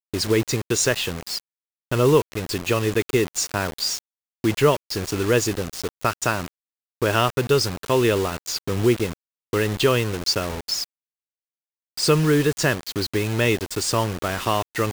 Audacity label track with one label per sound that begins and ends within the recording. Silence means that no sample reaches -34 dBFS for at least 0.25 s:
1.910000	3.990000	sound
4.440000	6.480000	sound
7.020000	9.130000	sound
9.530000	10.850000	sound